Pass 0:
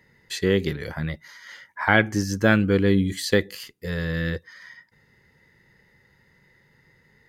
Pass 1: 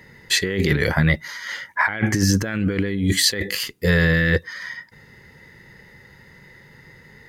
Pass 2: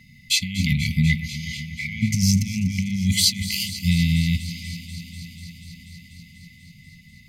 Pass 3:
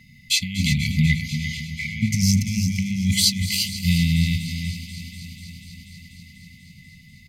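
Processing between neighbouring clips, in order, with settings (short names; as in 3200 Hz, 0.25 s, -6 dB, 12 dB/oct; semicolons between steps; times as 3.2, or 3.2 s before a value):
dynamic EQ 2000 Hz, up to +8 dB, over -41 dBFS, Q 2.4; negative-ratio compressor -27 dBFS, ratio -1; gain +7 dB
echo with dull and thin repeats by turns 0.122 s, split 2100 Hz, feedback 89%, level -13 dB; FFT band-reject 260–2000 Hz
echo 0.345 s -8.5 dB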